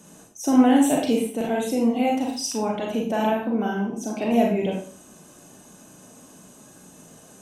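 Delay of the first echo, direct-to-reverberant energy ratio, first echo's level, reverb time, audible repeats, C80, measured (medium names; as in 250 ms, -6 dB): no echo, -1.5 dB, no echo, 0.45 s, no echo, 8.5 dB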